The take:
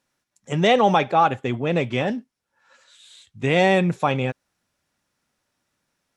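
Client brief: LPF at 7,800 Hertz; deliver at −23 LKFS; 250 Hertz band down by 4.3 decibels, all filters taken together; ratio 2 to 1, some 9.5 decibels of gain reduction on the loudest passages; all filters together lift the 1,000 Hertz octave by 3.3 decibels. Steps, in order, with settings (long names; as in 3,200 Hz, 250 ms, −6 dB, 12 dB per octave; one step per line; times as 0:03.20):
low-pass filter 7,800 Hz
parametric band 250 Hz −7 dB
parametric band 1,000 Hz +5 dB
downward compressor 2 to 1, threshold −28 dBFS
level +4.5 dB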